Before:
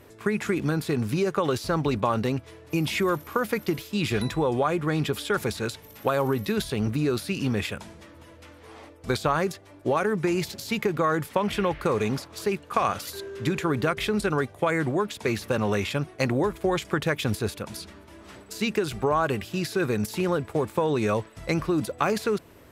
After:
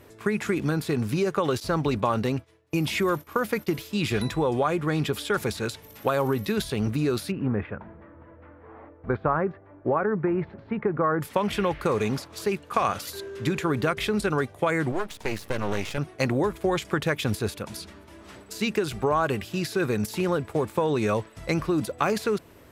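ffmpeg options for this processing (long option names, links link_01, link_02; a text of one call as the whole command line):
ffmpeg -i in.wav -filter_complex "[0:a]asettb=1/sr,asplit=3[link_01][link_02][link_03];[link_01]atrim=end=1.604[link_04];[link_02]atrim=start=1.6:end=3.77,asetpts=PTS-STARTPTS,afade=type=in:duration=0.004:curve=qsin,afade=type=out:start_time=2.166:duration=0.004:curve=qsin,agate=range=-33dB:threshold=-37dB:ratio=3:release=100:detection=peak[link_05];[link_03]atrim=start=3.766[link_06];[link_04][link_05]acrossfade=duration=0.004:curve1=hsin:curve2=qsin[link_07];[link_07][link_06]acrossfade=duration=0.004:curve1=qsin:curve2=hsin,asplit=3[link_08][link_09][link_10];[link_08]afade=type=out:start_time=7.3:duration=0.02[link_11];[link_09]lowpass=frequency=1700:width=0.5412,lowpass=frequency=1700:width=1.3066,afade=type=in:start_time=7.3:duration=0.02,afade=type=out:start_time=11.2:duration=0.02[link_12];[link_10]afade=type=in:start_time=11.2:duration=0.02[link_13];[link_11][link_12][link_13]amix=inputs=3:normalize=0,asettb=1/sr,asplit=3[link_14][link_15][link_16];[link_14]atrim=end=14.924[link_17];[link_15]atrim=start=14.92:end=15.98,asetpts=PTS-STARTPTS,afade=type=in:duration=0.004:curve=qsin,afade=type=out:start_time=1.056:duration=0.004:curve=qsin,aeval=exprs='max(val(0),0)':channel_layout=same[link_18];[link_16]atrim=start=15.976[link_19];[link_17][link_18]acrossfade=duration=0.004:curve1=hsin:curve2=qsin[link_20];[link_20][link_19]acrossfade=duration=0.004:curve1=qsin:curve2=hsin" out.wav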